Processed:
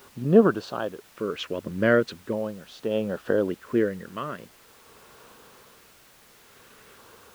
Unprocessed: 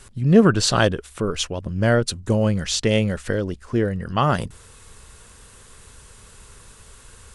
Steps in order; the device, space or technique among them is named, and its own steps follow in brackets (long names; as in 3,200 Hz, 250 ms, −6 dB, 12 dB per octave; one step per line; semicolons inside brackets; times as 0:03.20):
shortwave radio (band-pass filter 270–2,900 Hz; amplitude tremolo 0.57 Hz, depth 79%; auto-filter notch square 0.43 Hz 800–2,100 Hz; white noise bed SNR 22 dB)
high-shelf EQ 3,700 Hz −9 dB
level +3.5 dB